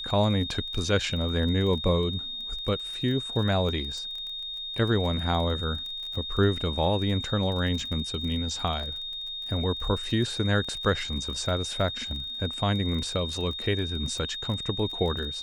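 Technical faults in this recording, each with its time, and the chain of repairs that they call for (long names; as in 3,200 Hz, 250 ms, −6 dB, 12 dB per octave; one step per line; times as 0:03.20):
surface crackle 25 per second −34 dBFS
whistle 3,700 Hz −33 dBFS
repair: click removal
notch filter 3,700 Hz, Q 30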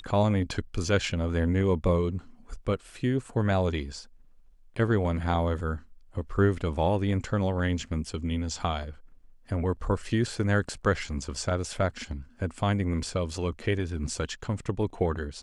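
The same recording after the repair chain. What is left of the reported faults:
none of them is left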